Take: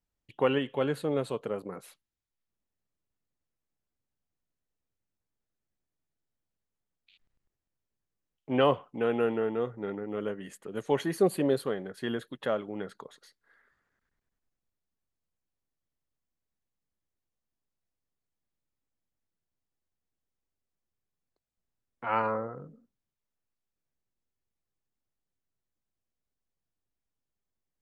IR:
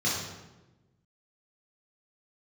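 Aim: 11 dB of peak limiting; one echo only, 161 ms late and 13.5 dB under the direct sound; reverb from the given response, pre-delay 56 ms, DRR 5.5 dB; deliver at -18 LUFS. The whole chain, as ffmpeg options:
-filter_complex "[0:a]alimiter=limit=0.0841:level=0:latency=1,aecho=1:1:161:0.211,asplit=2[s0][s1];[1:a]atrim=start_sample=2205,adelay=56[s2];[s1][s2]afir=irnorm=-1:irlink=0,volume=0.158[s3];[s0][s3]amix=inputs=2:normalize=0,volume=5.62"

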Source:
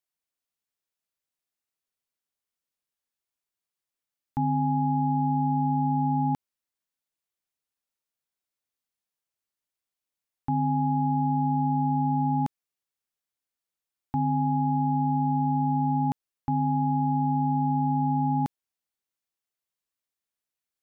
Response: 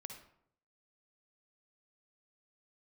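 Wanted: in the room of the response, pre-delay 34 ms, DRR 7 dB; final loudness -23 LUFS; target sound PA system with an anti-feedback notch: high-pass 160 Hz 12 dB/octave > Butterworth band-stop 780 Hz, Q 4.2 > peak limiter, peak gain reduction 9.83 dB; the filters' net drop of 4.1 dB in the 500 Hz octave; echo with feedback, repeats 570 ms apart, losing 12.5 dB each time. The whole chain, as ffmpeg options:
-filter_complex "[0:a]equalizer=f=500:t=o:g=-7,aecho=1:1:570|1140|1710:0.237|0.0569|0.0137,asplit=2[s0][s1];[1:a]atrim=start_sample=2205,adelay=34[s2];[s1][s2]afir=irnorm=-1:irlink=0,volume=0.75[s3];[s0][s3]amix=inputs=2:normalize=0,highpass=160,asuperstop=centerf=780:order=8:qfactor=4.2,volume=5.31,alimiter=limit=0.168:level=0:latency=1"

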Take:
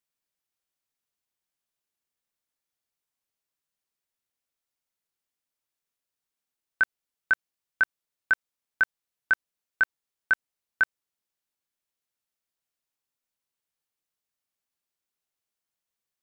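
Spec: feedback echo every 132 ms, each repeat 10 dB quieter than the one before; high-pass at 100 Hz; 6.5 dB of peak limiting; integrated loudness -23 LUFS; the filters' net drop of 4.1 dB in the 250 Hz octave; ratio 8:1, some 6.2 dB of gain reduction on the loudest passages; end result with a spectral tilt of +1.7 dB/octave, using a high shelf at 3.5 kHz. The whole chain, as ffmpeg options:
-af "highpass=100,equalizer=f=250:t=o:g=-5.5,highshelf=f=3500:g=6,acompressor=threshold=0.0708:ratio=8,alimiter=limit=0.106:level=0:latency=1,aecho=1:1:132|264|396|528:0.316|0.101|0.0324|0.0104,volume=5.31"

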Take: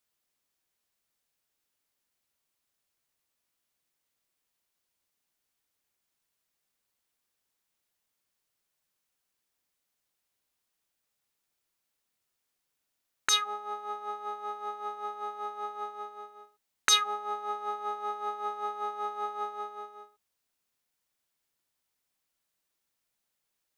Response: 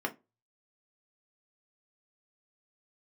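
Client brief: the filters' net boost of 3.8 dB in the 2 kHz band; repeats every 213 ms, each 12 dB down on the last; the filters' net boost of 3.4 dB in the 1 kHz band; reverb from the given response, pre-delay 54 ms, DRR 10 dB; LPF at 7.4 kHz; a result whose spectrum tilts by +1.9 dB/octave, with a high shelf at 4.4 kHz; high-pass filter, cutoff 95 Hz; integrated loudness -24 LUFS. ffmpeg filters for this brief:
-filter_complex "[0:a]highpass=95,lowpass=7400,equalizer=f=1000:t=o:g=3.5,equalizer=f=2000:t=o:g=4.5,highshelf=f=4400:g=-4.5,aecho=1:1:213|426|639:0.251|0.0628|0.0157,asplit=2[s0][s1];[1:a]atrim=start_sample=2205,adelay=54[s2];[s1][s2]afir=irnorm=-1:irlink=0,volume=0.168[s3];[s0][s3]amix=inputs=2:normalize=0,volume=1.78"

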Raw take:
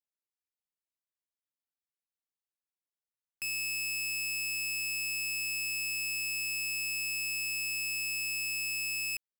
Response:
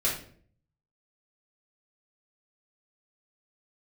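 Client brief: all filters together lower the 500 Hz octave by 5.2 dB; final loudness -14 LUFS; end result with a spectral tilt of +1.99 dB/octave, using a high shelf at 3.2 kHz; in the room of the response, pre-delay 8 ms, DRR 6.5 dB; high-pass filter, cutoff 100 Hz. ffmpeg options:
-filter_complex "[0:a]highpass=100,equalizer=f=500:t=o:g=-7,highshelf=f=3200:g=5,asplit=2[s0][s1];[1:a]atrim=start_sample=2205,adelay=8[s2];[s1][s2]afir=irnorm=-1:irlink=0,volume=0.168[s3];[s0][s3]amix=inputs=2:normalize=0,volume=6.31"

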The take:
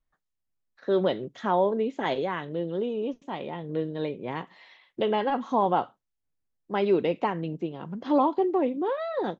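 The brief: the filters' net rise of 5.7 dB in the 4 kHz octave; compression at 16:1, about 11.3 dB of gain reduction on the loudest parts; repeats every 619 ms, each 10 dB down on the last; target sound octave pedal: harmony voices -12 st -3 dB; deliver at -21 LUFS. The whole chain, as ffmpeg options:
-filter_complex "[0:a]equalizer=f=4000:t=o:g=8,acompressor=threshold=0.0355:ratio=16,aecho=1:1:619|1238|1857|2476:0.316|0.101|0.0324|0.0104,asplit=2[s0][s1];[s1]asetrate=22050,aresample=44100,atempo=2,volume=0.708[s2];[s0][s2]amix=inputs=2:normalize=0,volume=3.98"

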